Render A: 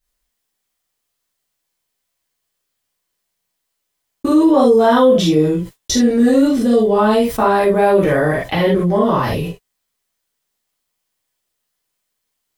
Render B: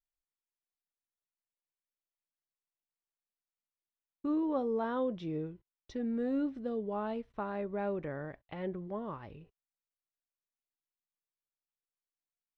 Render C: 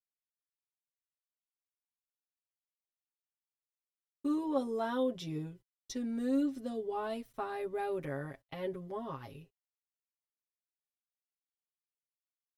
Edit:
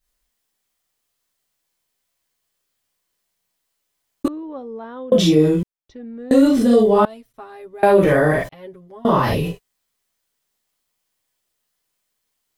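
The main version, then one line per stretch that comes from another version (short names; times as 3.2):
A
4.28–5.12 from B
5.63–6.31 from B
7.05–7.83 from C
8.49–9.05 from C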